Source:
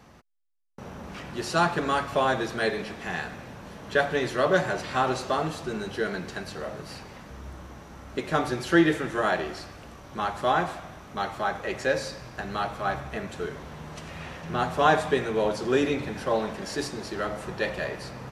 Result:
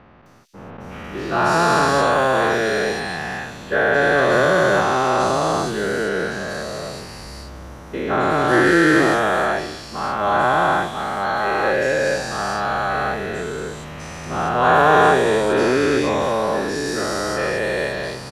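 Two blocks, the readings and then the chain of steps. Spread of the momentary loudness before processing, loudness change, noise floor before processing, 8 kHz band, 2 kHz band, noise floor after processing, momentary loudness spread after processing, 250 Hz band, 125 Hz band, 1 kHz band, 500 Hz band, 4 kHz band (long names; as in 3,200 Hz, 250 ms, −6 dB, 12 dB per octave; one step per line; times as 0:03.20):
18 LU, +9.0 dB, −46 dBFS, +10.0 dB, +10.5 dB, −36 dBFS, 15 LU, +7.5 dB, +7.0 dB, +10.0 dB, +9.0 dB, +7.5 dB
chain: every bin's largest magnitude spread in time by 480 ms
multiband delay without the direct sound lows, highs 260 ms, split 3,300 Hz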